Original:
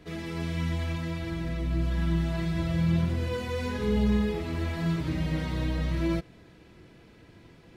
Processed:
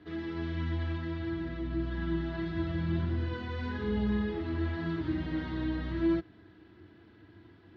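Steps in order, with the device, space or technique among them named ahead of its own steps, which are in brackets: guitar cabinet (speaker cabinet 75–4000 Hz, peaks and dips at 94 Hz +9 dB, 150 Hz -10 dB, 320 Hz +8 dB, 520 Hz -9 dB, 1600 Hz +5 dB, 2400 Hz -8 dB); gain -4 dB

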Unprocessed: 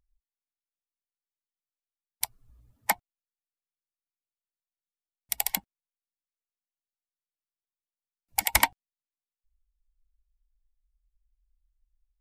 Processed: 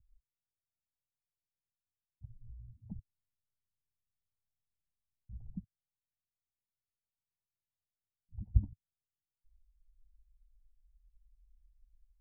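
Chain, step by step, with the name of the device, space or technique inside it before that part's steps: 2.93–5.37 low shelf 120 Hz +10 dB; the neighbour's flat through the wall (LPF 170 Hz 24 dB/oct; bell 100 Hz +5 dB 0.87 oct); gain +7 dB

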